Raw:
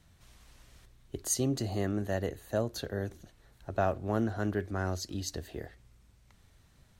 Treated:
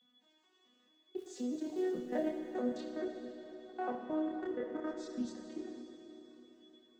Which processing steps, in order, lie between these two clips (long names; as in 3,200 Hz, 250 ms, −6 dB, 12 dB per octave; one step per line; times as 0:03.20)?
vocoder with an arpeggio as carrier major triad, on B3, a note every 215 ms
high-pass filter 170 Hz 24 dB per octave
0:01.15–0:02.32: surface crackle 530 per second −52 dBFS
0:03.91–0:05.05: downward compressor 4 to 1, threshold −33 dBFS, peak gain reduction 7 dB
steady tone 3,400 Hz −65 dBFS
output level in coarse steps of 18 dB
multi-voice chorus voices 4, 0.56 Hz, delay 28 ms, depth 1.1 ms
feedback delay with all-pass diffusion 514 ms, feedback 44%, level −15 dB
four-comb reverb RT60 2.6 s, combs from 26 ms, DRR 3.5 dB
level +4 dB